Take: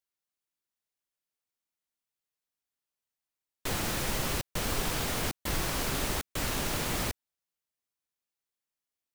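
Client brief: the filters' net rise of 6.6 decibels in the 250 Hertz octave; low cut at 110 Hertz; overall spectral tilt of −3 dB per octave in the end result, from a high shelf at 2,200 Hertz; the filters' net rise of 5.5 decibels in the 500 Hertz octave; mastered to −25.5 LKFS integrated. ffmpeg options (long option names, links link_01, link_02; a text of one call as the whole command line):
ffmpeg -i in.wav -af "highpass=110,equalizer=frequency=250:width_type=o:gain=7.5,equalizer=frequency=500:width_type=o:gain=4.5,highshelf=frequency=2200:gain=3.5,volume=3dB" out.wav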